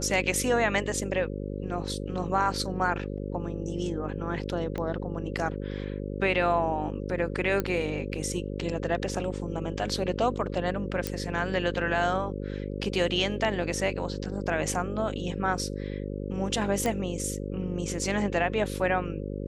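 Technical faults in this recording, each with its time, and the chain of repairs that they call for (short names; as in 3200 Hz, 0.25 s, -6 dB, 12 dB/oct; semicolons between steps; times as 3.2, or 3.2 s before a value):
buzz 50 Hz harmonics 11 -34 dBFS
4.78 pop -21 dBFS
7.6 pop -14 dBFS
11.07 pop -13 dBFS
16.86 pop -14 dBFS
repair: de-click; de-hum 50 Hz, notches 11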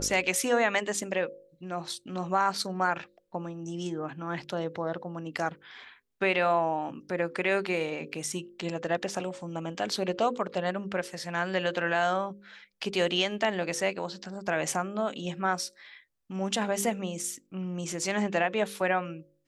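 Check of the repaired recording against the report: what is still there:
none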